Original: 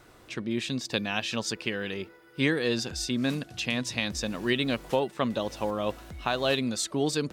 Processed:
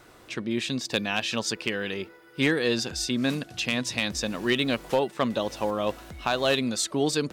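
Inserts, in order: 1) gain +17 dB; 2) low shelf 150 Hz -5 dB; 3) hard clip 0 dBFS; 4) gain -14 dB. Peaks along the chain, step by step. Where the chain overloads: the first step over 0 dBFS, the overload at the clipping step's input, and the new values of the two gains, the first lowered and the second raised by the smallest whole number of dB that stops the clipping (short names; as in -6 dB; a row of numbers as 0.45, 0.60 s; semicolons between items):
+4.5, +4.5, 0.0, -14.0 dBFS; step 1, 4.5 dB; step 1 +12 dB, step 4 -9 dB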